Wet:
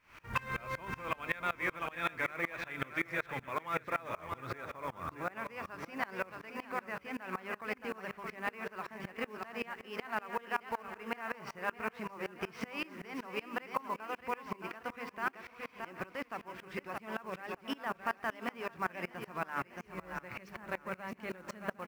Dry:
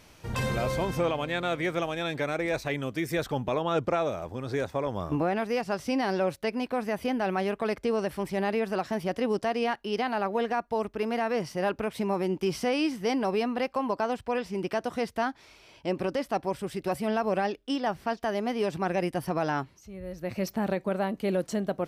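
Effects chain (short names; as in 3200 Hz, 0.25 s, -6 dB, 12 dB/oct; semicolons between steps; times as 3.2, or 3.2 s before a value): median filter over 5 samples; compressor 10:1, threshold -32 dBFS, peak gain reduction 10 dB; band shelf 1600 Hz +12 dB; notches 50/100/150/200/250/300/350/400/450 Hz; echo 0.757 s -15.5 dB; companded quantiser 6-bit; feedback echo 0.622 s, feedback 48%, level -8 dB; dB-ramp tremolo swelling 5.3 Hz, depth 25 dB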